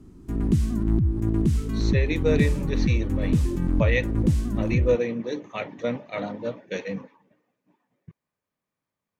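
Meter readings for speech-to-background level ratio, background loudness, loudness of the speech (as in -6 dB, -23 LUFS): -4.5 dB, -24.5 LUFS, -29.0 LUFS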